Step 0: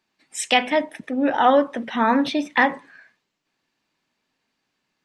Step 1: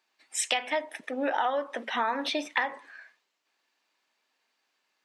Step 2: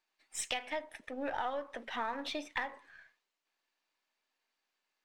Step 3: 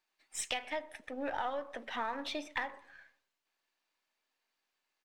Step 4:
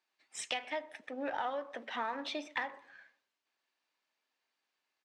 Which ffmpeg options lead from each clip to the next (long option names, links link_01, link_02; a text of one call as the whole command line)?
ffmpeg -i in.wav -af "highpass=510,acompressor=threshold=-24dB:ratio=12" out.wav
ffmpeg -i in.wav -af "aeval=exprs='if(lt(val(0),0),0.708*val(0),val(0))':channel_layout=same,volume=-7.5dB" out.wav
ffmpeg -i in.wav -filter_complex "[0:a]asplit=2[link_01][link_02];[link_02]adelay=125,lowpass=frequency=860:poles=1,volume=-18dB,asplit=2[link_03][link_04];[link_04]adelay=125,lowpass=frequency=860:poles=1,volume=0.46,asplit=2[link_05][link_06];[link_06]adelay=125,lowpass=frequency=860:poles=1,volume=0.46,asplit=2[link_07][link_08];[link_08]adelay=125,lowpass=frequency=860:poles=1,volume=0.46[link_09];[link_01][link_03][link_05][link_07][link_09]amix=inputs=5:normalize=0" out.wav
ffmpeg -i in.wav -af "highpass=150,lowpass=6900" out.wav